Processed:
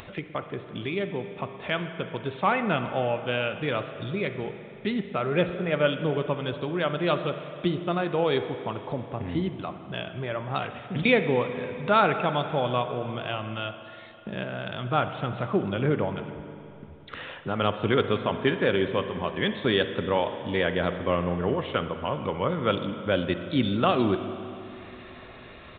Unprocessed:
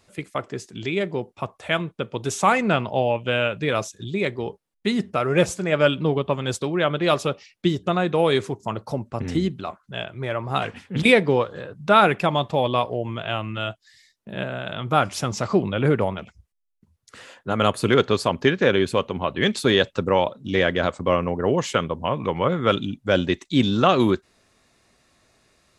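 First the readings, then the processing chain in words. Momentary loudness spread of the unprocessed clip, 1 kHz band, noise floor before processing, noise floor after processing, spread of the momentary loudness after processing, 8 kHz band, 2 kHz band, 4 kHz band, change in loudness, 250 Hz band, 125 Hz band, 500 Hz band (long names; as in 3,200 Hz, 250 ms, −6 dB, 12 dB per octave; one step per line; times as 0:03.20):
12 LU, −5.0 dB, −68 dBFS, −45 dBFS, 13 LU, below −40 dB, −5.0 dB, −5.5 dB, −5.0 dB, −4.5 dB, −4.5 dB, −4.5 dB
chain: downsampling to 8,000 Hz
upward compression, threshold −22 dBFS
spring reverb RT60 3 s, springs 40/57 ms, chirp 45 ms, DRR 8.5 dB
level −5.5 dB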